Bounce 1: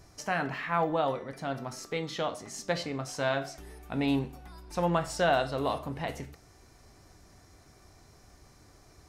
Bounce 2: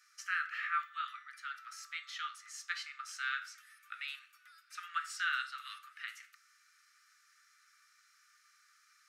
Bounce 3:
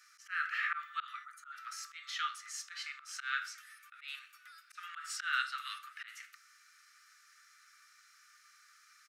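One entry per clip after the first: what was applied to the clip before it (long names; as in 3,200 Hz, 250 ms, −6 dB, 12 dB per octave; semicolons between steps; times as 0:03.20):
Chebyshev high-pass filter 1,200 Hz, order 10; high-shelf EQ 2,000 Hz −11.5 dB; level +4.5 dB
volume swells 173 ms; gain on a spectral selection 0:01.25–0:01.53, 1,500–6,000 Hz −13 dB; slap from a distant wall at 22 metres, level −28 dB; level +4.5 dB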